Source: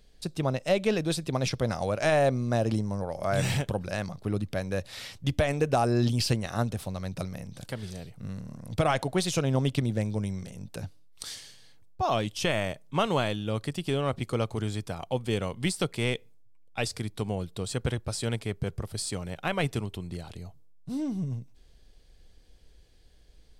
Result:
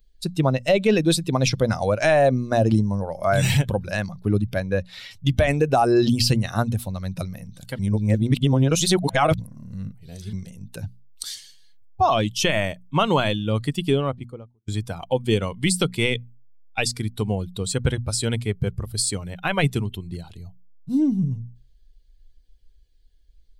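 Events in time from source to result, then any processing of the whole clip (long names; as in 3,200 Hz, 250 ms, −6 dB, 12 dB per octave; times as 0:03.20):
0:04.60–0:05.11: high-shelf EQ 6,500 Hz −10.5 dB
0:07.79–0:10.33: reverse
0:13.78–0:14.68: fade out and dull
whole clip: spectral dynamics exaggerated over time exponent 1.5; mains-hum notches 60/120/180/240 Hz; boost into a limiter +21.5 dB; level −8.5 dB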